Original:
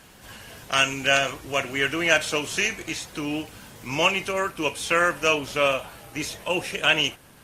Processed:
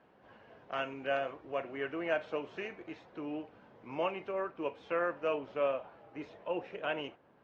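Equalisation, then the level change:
resonant band-pass 550 Hz, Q 0.82
high-frequency loss of the air 200 metres
−7.0 dB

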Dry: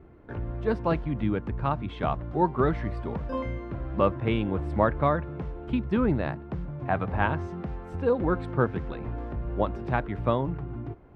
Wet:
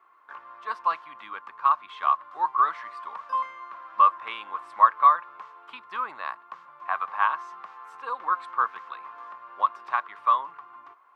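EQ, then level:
high-pass with resonance 1,100 Hz, resonance Q 11
high-shelf EQ 2,500 Hz +11 dB
−7.0 dB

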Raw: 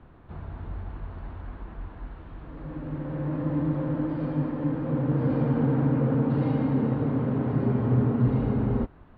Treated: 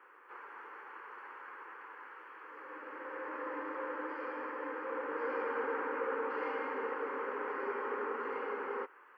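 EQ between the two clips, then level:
Butterworth high-pass 460 Hz 36 dB per octave
phaser with its sweep stopped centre 1,600 Hz, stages 4
+6.0 dB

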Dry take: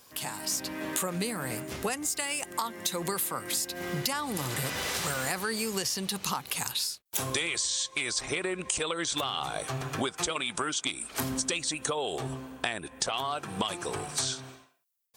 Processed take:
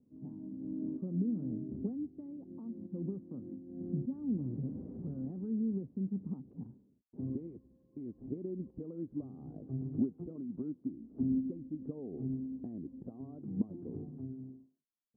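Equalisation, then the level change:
transistor ladder low-pass 290 Hz, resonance 55%
low-shelf EQ 66 Hz −9.5 dB
+7.0 dB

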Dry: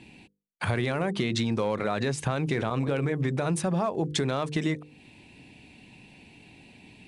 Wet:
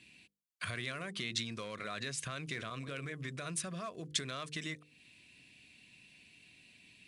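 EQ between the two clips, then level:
Butterworth band-reject 850 Hz, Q 3.3
guitar amp tone stack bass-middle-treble 5-5-5
low-shelf EQ 130 Hz −8 dB
+3.5 dB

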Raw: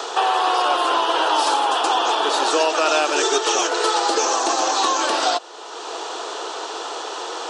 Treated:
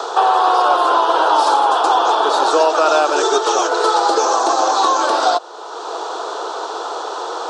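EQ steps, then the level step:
high-pass filter 360 Hz 12 dB per octave
flat-topped bell 2,300 Hz −9 dB 1 octave
high-shelf EQ 3,900 Hz −11.5 dB
+6.5 dB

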